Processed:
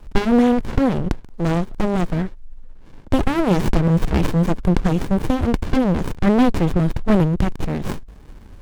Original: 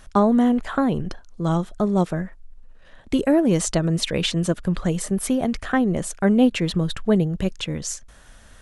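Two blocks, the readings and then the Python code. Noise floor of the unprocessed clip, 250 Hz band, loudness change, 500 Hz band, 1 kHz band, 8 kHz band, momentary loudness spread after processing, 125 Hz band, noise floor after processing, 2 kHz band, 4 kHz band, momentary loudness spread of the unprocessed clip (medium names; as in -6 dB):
-48 dBFS, +2.0 dB, +2.0 dB, +1.5 dB, +2.5 dB, -11.0 dB, 9 LU, +4.5 dB, -41 dBFS, +1.5 dB, -5.0 dB, 10 LU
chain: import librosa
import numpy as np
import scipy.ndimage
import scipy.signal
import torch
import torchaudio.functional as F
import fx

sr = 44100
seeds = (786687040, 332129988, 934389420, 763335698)

y = fx.running_max(x, sr, window=65)
y = F.gain(torch.from_numpy(y), 9.0).numpy()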